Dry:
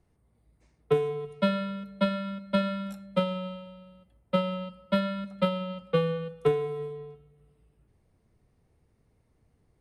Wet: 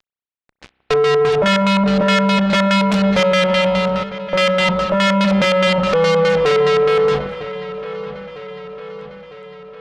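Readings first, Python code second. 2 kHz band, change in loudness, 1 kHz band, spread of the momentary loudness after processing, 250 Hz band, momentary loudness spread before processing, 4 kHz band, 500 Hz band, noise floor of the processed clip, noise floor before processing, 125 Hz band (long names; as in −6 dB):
+22.0 dB, +15.0 dB, +17.0 dB, 17 LU, +14.0 dB, 10 LU, +19.5 dB, +15.0 dB, −85 dBFS, −69 dBFS, +12.5 dB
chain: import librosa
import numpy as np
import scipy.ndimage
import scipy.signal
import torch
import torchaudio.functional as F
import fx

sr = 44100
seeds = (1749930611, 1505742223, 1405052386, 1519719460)

p1 = fx.low_shelf(x, sr, hz=270.0, db=-10.5)
p2 = fx.leveller(p1, sr, passes=2)
p3 = fx.over_compress(p2, sr, threshold_db=-29.0, ratio=-1.0)
p4 = p2 + (p3 * 10.0 ** (-1.0 / 20.0))
p5 = fx.fuzz(p4, sr, gain_db=54.0, gate_db=-60.0)
p6 = fx.filter_lfo_lowpass(p5, sr, shape='square', hz=4.8, low_hz=930.0, high_hz=4100.0, q=1.0)
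p7 = fx.echo_wet_lowpass(p6, sr, ms=953, feedback_pct=57, hz=3400.0, wet_db=-14.0)
y = fx.rev_spring(p7, sr, rt60_s=3.6, pass_ms=(31,), chirp_ms=35, drr_db=18.0)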